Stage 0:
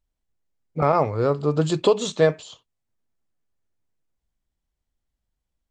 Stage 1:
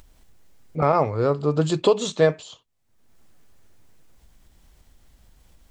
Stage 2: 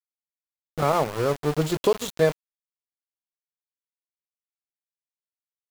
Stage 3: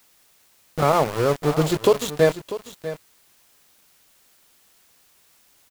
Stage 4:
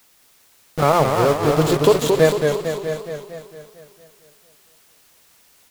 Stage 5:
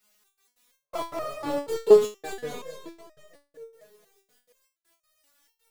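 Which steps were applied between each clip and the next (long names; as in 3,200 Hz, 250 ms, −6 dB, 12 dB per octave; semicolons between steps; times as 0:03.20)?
upward compression, threshold −32 dBFS
centre clipping without the shift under −24.5 dBFS; level −2.5 dB
in parallel at −12 dB: bit-depth reduction 8 bits, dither triangular; on the sum: single-tap delay 645 ms −13.5 dB; level +1.5 dB
feedback echo with a swinging delay time 227 ms, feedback 56%, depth 124 cents, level −5 dB; level +2.5 dB
multi-voice chorus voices 2, 0.96 Hz, delay 24 ms, depth 3 ms; gate pattern "xxx.x.xx..x.xx" 161 BPM −60 dB; step-sequenced resonator 4.2 Hz 210–620 Hz; level +5.5 dB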